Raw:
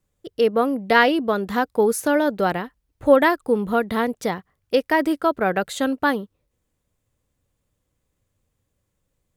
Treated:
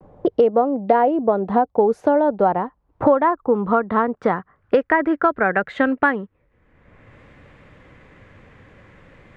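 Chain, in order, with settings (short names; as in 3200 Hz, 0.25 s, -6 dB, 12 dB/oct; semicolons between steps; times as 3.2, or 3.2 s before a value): low-pass sweep 770 Hz -> 2000 Hz, 1.92–5.9; vibrato 0.44 Hz 29 cents; three-band squash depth 100%; gain -1 dB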